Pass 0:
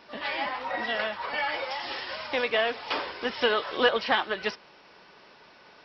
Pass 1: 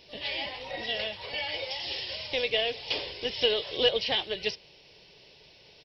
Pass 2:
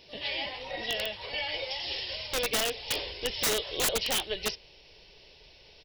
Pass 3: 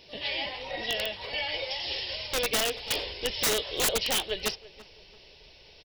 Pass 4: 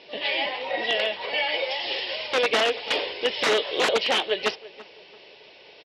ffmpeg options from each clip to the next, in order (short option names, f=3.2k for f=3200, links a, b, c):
-af "firequalizer=gain_entry='entry(120,0);entry(230,-16);entry(430,-8);entry(1300,-29);entry(2000,-13);entry(2900,-4)':delay=0.05:min_phase=1,volume=8dB"
-af "asubboost=boost=6:cutoff=57,aeval=exprs='(mod(10.6*val(0)+1,2)-1)/10.6':c=same"
-filter_complex "[0:a]asplit=2[a][b];[b]adelay=336,lowpass=f=1.9k:p=1,volume=-18dB,asplit=2[c][d];[d]adelay=336,lowpass=f=1.9k:p=1,volume=0.29,asplit=2[e][f];[f]adelay=336,lowpass=f=1.9k:p=1,volume=0.29[g];[a][c][e][g]amix=inputs=4:normalize=0,volume=1.5dB"
-af "highpass=300,lowpass=2.9k,volume=8.5dB"